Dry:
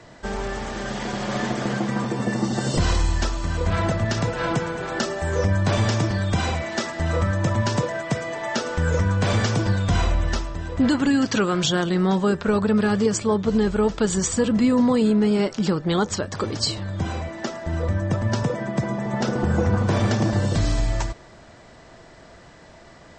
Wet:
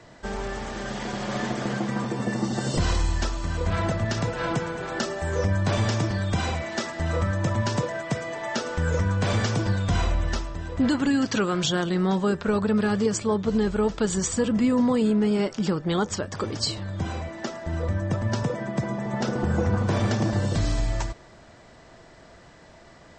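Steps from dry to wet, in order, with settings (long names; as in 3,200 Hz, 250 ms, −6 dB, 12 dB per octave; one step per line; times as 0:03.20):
0:14.42–0:16.60: notch filter 4,100 Hz, Q 14
level −3 dB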